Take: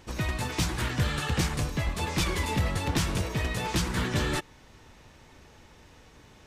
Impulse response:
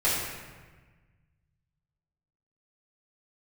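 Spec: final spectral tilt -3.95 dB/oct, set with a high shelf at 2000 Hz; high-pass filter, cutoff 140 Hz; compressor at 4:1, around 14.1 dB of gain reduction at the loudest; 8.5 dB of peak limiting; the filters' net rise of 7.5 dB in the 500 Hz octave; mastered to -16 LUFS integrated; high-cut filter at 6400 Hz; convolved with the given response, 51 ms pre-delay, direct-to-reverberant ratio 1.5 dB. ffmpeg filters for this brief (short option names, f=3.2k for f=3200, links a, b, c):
-filter_complex "[0:a]highpass=140,lowpass=6.4k,equalizer=f=500:t=o:g=9,highshelf=f=2k:g=6,acompressor=threshold=-39dB:ratio=4,alimiter=level_in=9.5dB:limit=-24dB:level=0:latency=1,volume=-9.5dB,asplit=2[a][b];[1:a]atrim=start_sample=2205,adelay=51[c];[b][c]afir=irnorm=-1:irlink=0,volume=-14.5dB[d];[a][d]amix=inputs=2:normalize=0,volume=25.5dB"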